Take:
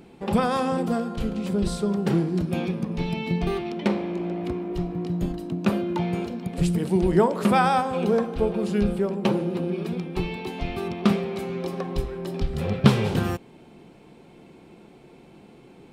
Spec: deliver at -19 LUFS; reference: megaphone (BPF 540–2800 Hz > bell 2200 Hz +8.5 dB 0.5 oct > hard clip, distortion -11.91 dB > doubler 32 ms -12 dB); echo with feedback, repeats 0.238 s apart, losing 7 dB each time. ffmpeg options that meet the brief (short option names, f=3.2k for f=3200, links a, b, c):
-filter_complex "[0:a]highpass=540,lowpass=2.8k,equalizer=f=2.2k:t=o:w=0.5:g=8.5,aecho=1:1:238|476|714|952|1190:0.447|0.201|0.0905|0.0407|0.0183,asoftclip=type=hard:threshold=-21dB,asplit=2[a][b];[b]adelay=32,volume=-12dB[c];[a][c]amix=inputs=2:normalize=0,volume=12dB"